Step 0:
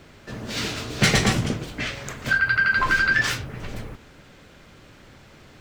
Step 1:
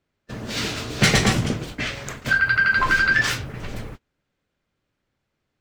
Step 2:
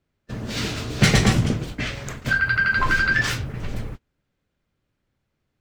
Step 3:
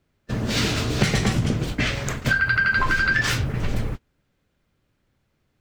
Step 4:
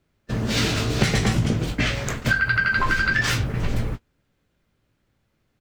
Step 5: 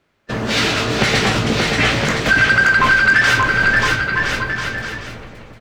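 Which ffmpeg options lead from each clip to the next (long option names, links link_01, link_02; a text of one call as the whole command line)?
ffmpeg -i in.wav -af "agate=range=-30dB:threshold=-36dB:ratio=16:detection=peak,volume=1.5dB" out.wav
ffmpeg -i in.wav -af "lowshelf=frequency=230:gain=7,volume=-2dB" out.wav
ffmpeg -i in.wav -af "acompressor=threshold=-22dB:ratio=12,volume=5.5dB" out.wav
ffmpeg -i in.wav -filter_complex "[0:a]asplit=2[link_01][link_02];[link_02]adelay=18,volume=-11dB[link_03];[link_01][link_03]amix=inputs=2:normalize=0" out.wav
ffmpeg -i in.wav -filter_complex "[0:a]aecho=1:1:580|1015|1341|1586|1769:0.631|0.398|0.251|0.158|0.1,asplit=2[link_01][link_02];[link_02]highpass=frequency=720:poles=1,volume=16dB,asoftclip=type=tanh:threshold=-4dB[link_03];[link_01][link_03]amix=inputs=2:normalize=0,lowpass=frequency=2700:poles=1,volume=-6dB,volume=1.5dB" out.wav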